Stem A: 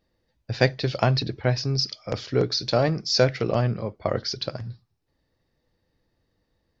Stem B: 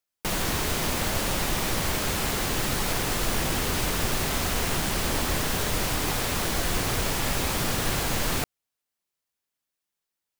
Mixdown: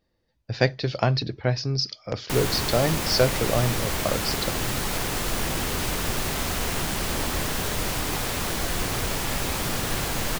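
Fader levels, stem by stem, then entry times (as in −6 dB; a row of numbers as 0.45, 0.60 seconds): −1.0, −0.5 decibels; 0.00, 2.05 seconds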